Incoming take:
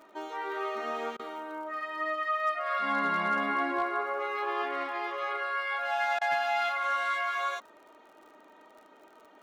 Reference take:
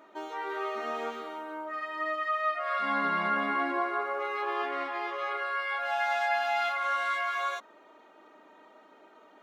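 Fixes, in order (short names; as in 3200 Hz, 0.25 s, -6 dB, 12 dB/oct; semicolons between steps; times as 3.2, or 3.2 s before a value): clip repair -20.5 dBFS; de-click; interpolate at 1.17/6.19, 22 ms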